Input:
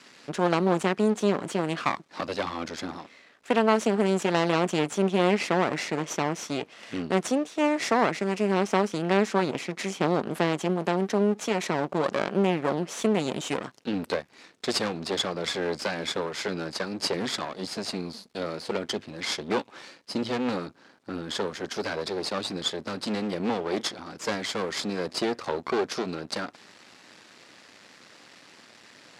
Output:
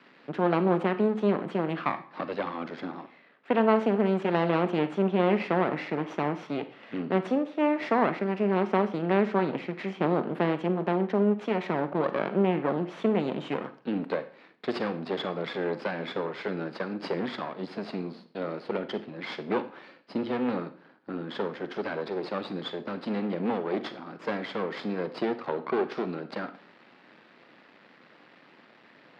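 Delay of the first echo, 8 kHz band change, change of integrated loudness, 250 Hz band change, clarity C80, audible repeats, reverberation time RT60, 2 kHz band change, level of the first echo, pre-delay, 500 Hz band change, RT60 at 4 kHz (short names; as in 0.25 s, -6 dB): none, under -25 dB, -1.5 dB, -0.5 dB, 17.5 dB, none, 0.45 s, -3.5 dB, none, 37 ms, -1.0 dB, 0.40 s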